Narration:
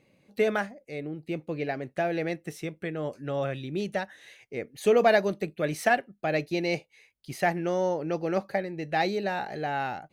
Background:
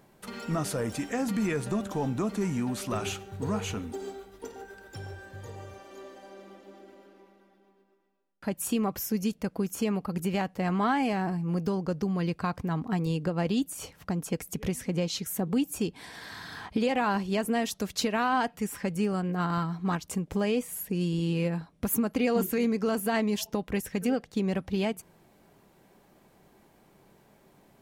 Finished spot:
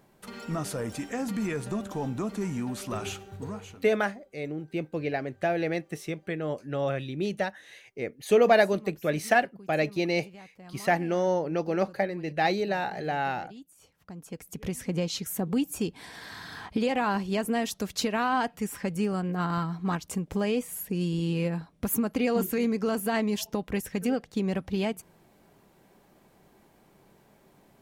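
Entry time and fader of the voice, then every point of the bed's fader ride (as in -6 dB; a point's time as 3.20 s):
3.45 s, +1.0 dB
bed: 3.35 s -2 dB
3.91 s -19.5 dB
13.75 s -19.5 dB
14.82 s 0 dB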